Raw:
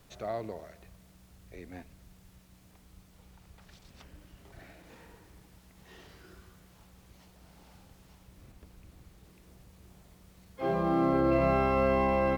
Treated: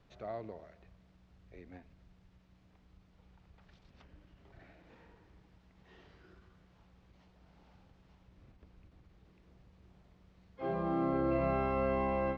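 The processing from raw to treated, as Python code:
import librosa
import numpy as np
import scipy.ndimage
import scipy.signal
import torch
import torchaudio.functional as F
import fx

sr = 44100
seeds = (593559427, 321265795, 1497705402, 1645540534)

y = fx.air_absorb(x, sr, metres=180.0)
y = fx.end_taper(y, sr, db_per_s=170.0)
y = y * 10.0 ** (-5.5 / 20.0)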